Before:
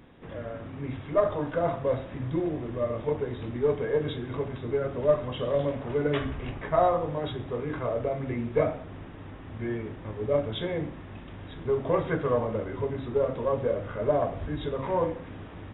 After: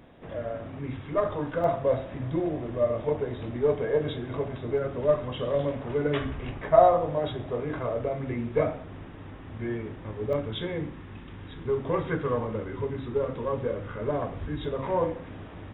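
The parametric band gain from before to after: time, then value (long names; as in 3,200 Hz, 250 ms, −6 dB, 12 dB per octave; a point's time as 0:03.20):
parametric band 640 Hz 0.42 octaves
+7.5 dB
from 0:00.79 −3.5 dB
from 0:01.64 +6 dB
from 0:04.78 −0.5 dB
from 0:06.64 +7.5 dB
from 0:07.82 −1 dB
from 0:10.33 −8.5 dB
from 0:14.65 +1.5 dB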